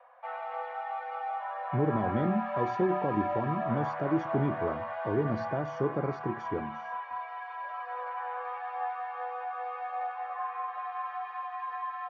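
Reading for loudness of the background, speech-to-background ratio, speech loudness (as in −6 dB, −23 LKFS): −36.0 LKFS, 3.5 dB, −32.5 LKFS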